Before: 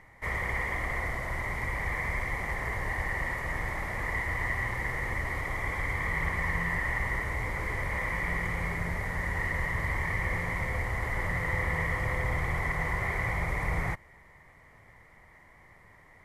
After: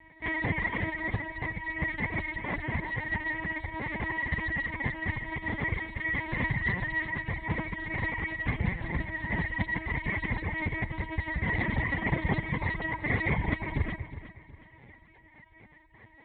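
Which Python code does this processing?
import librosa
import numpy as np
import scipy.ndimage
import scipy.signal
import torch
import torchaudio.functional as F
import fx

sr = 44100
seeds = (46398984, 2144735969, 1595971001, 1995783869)

p1 = fx.peak_eq(x, sr, hz=230.0, db=-7.0, octaves=2.3)
p2 = fx.room_shoebox(p1, sr, seeds[0], volume_m3=280.0, walls='furnished', distance_m=4.4)
p3 = np.clip(10.0 ** (13.5 / 20.0) * p2, -1.0, 1.0) / 10.0 ** (13.5 / 20.0)
p4 = fx.lpc_vocoder(p3, sr, seeds[1], excitation='pitch_kept', order=10)
p5 = fx.dereverb_blind(p4, sr, rt60_s=1.6)
p6 = scipy.signal.sosfilt(scipy.signal.butter(2, 63.0, 'highpass', fs=sr, output='sos'), p5)
p7 = fx.peak_eq(p6, sr, hz=1300.0, db=-10.0, octaves=1.1)
y = p7 + fx.echo_feedback(p7, sr, ms=365, feedback_pct=37, wet_db=-13.5, dry=0)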